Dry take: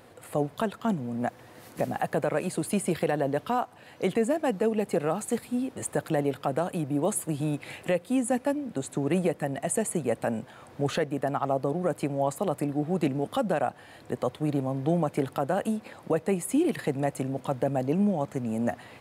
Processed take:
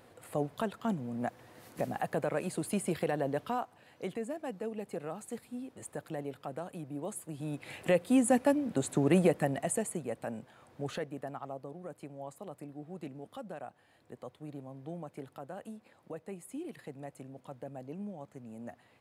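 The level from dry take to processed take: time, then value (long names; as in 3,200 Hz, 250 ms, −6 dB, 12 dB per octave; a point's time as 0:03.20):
0:03.40 −5.5 dB
0:04.21 −12.5 dB
0:07.30 −12.5 dB
0:07.99 +0.5 dB
0:09.40 +0.5 dB
0:10.07 −10 dB
0:11.03 −10 dB
0:11.70 −17 dB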